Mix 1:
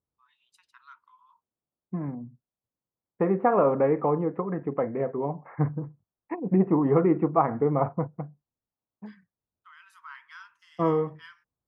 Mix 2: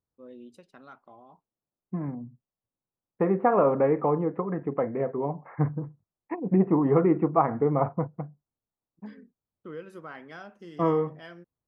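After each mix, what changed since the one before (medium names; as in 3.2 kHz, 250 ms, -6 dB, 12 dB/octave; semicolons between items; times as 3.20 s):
first voice: remove brick-wall FIR high-pass 880 Hz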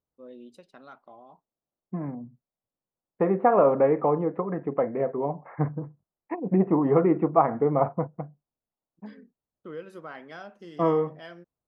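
master: add fifteen-band graphic EQ 100 Hz -6 dB, 630 Hz +4 dB, 4 kHz +4 dB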